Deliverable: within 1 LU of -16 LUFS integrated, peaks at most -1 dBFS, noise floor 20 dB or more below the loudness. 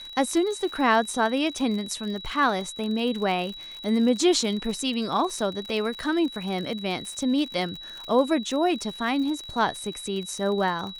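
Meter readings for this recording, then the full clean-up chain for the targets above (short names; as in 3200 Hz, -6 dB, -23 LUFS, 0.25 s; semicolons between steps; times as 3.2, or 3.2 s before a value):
ticks 56/s; steady tone 3900 Hz; tone level -38 dBFS; loudness -25.5 LUFS; peak -8.5 dBFS; loudness target -16.0 LUFS
-> de-click; notch 3900 Hz, Q 30; gain +9.5 dB; limiter -1 dBFS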